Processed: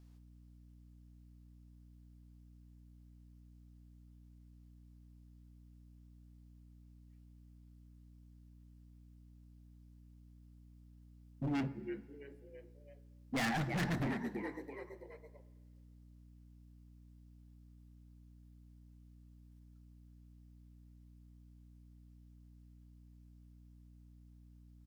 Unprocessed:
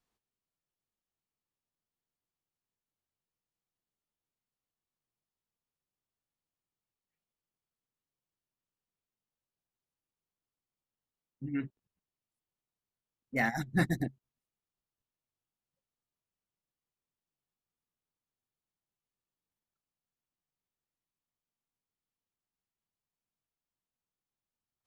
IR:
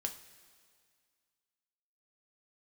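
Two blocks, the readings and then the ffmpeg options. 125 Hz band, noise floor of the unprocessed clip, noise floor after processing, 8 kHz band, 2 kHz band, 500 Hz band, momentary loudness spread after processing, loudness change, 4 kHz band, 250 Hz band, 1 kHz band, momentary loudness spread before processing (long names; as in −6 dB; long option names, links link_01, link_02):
−2.0 dB, below −85 dBFS, −60 dBFS, 0.0 dB, −5.0 dB, −1.0 dB, 21 LU, −6.5 dB, +3.5 dB, −2.0 dB, −2.0 dB, 11 LU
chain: -filter_complex "[0:a]acrossover=split=2600[link_01][link_02];[link_02]acompressor=threshold=-58dB:ratio=4[link_03];[link_01][link_03]amix=inputs=2:normalize=0,asplit=5[link_04][link_05][link_06][link_07][link_08];[link_05]adelay=332,afreqshift=73,volume=-16dB[link_09];[link_06]adelay=664,afreqshift=146,volume=-22.4dB[link_10];[link_07]adelay=996,afreqshift=219,volume=-28.8dB[link_11];[link_08]adelay=1328,afreqshift=292,volume=-35.1dB[link_12];[link_04][link_09][link_10][link_11][link_12]amix=inputs=5:normalize=0,asoftclip=type=tanh:threshold=-33dB,equalizer=frequency=5100:width_type=o:width=0.37:gain=3,asplit=2[link_13][link_14];[1:a]atrim=start_sample=2205[link_15];[link_14][link_15]afir=irnorm=-1:irlink=0,volume=-1dB[link_16];[link_13][link_16]amix=inputs=2:normalize=0,volume=35dB,asoftclip=hard,volume=-35dB,bandreject=frequency=61.28:width_type=h:width=4,bandreject=frequency=122.56:width_type=h:width=4,bandreject=frequency=183.84:width_type=h:width=4,bandreject=frequency=245.12:width_type=h:width=4,bandreject=frequency=306.4:width_type=h:width=4,bandreject=frequency=367.68:width_type=h:width=4,bandreject=frequency=428.96:width_type=h:width=4,bandreject=frequency=490.24:width_type=h:width=4,bandreject=frequency=551.52:width_type=h:width=4,bandreject=frequency=612.8:width_type=h:width=4,bandreject=frequency=674.08:width_type=h:width=4,bandreject=frequency=735.36:width_type=h:width=4,bandreject=frequency=796.64:width_type=h:width=4,bandreject=frequency=857.92:width_type=h:width=4,bandreject=frequency=919.2:width_type=h:width=4,bandreject=frequency=980.48:width_type=h:width=4,bandreject=frequency=1041.76:width_type=h:width=4,bandreject=frequency=1103.04:width_type=h:width=4,bandreject=frequency=1164.32:width_type=h:width=4,bandreject=frequency=1225.6:width_type=h:width=4,bandreject=frequency=1286.88:width_type=h:width=4,bandreject=frequency=1348.16:width_type=h:width=4,bandreject=frequency=1409.44:width_type=h:width=4,bandreject=frequency=1470.72:width_type=h:width=4,aeval=exprs='val(0)+0.001*(sin(2*PI*60*n/s)+sin(2*PI*2*60*n/s)/2+sin(2*PI*3*60*n/s)/3+sin(2*PI*4*60*n/s)/4+sin(2*PI*5*60*n/s)/5)':channel_layout=same,volume=2.5dB"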